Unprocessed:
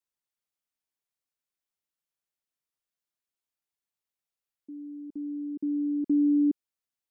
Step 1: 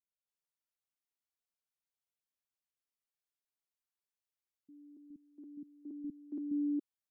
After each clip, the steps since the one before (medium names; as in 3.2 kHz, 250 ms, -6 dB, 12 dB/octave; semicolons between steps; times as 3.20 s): bands offset in time lows, highs 280 ms, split 250 Hz; trim -7 dB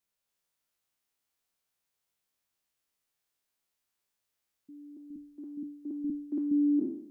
spectral sustain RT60 0.70 s; trim +8 dB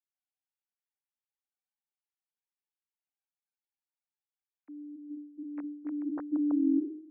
formants replaced by sine waves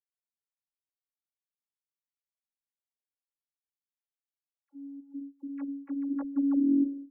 gate -45 dBFS, range -16 dB; robot voice 280 Hz; phase dispersion lows, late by 51 ms, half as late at 650 Hz; trim +2.5 dB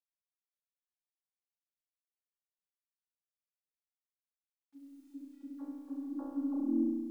low-pass 1.1 kHz 24 dB/octave; bit crusher 12-bit; flutter echo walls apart 5.8 m, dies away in 1.4 s; trim -5.5 dB